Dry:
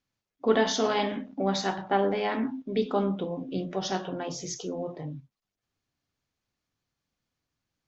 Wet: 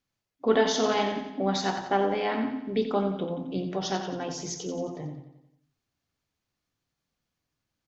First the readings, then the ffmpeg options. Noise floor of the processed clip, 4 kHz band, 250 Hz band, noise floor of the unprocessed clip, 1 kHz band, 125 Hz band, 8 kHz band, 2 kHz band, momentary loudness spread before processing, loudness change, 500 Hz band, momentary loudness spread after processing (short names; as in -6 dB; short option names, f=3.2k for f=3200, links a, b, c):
-84 dBFS, +0.5 dB, +0.5 dB, under -85 dBFS, +1.0 dB, +0.5 dB, n/a, +0.5 dB, 10 LU, +0.5 dB, +0.5 dB, 10 LU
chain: -af "aecho=1:1:89|178|267|356|445|534:0.355|0.185|0.0959|0.0499|0.0259|0.0135"